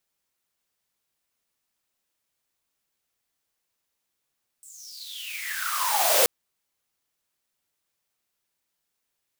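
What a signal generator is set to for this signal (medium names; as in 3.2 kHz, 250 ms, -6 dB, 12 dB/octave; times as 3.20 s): swept filtered noise white, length 1.63 s highpass, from 8.2 kHz, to 490 Hz, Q 11, exponential, gain ramp +36 dB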